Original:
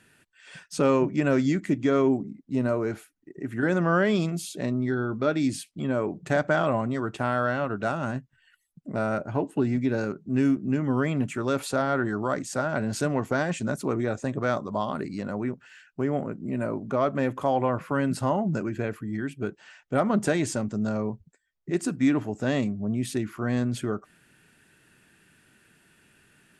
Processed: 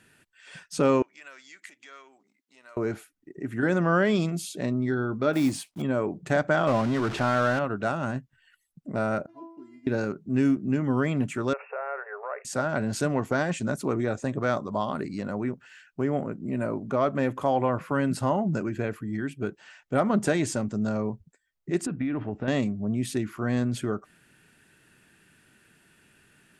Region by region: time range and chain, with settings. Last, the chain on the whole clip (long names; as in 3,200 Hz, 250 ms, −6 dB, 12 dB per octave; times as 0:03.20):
0:01.02–0:02.77: downward compressor 2.5 to 1, threshold −35 dBFS + high-pass filter 1,500 Hz
0:05.33–0:05.83: one scale factor per block 5 bits + parametric band 830 Hz +9.5 dB 1.4 octaves
0:06.67–0:07.59: converter with a step at zero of −29 dBFS + low-pass filter 6,100 Hz
0:09.26–0:09.87: running median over 15 samples + loudspeaker in its box 110–9,700 Hz, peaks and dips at 110 Hz −7 dB, 260 Hz +9 dB, 2,400 Hz −3 dB, 3,700 Hz −8 dB, 6,400 Hz −4 dB + stiff-string resonator 330 Hz, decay 0.54 s, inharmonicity 0.002
0:11.53–0:12.45: downward compressor, threshold −26 dBFS + linear-phase brick-wall band-pass 400–2,800 Hz
0:21.86–0:22.48: downward compressor 10 to 1, threshold −25 dBFS + low-pass filter 3,200 Hz 24 dB per octave + low-shelf EQ 62 Hz +9.5 dB
whole clip: no processing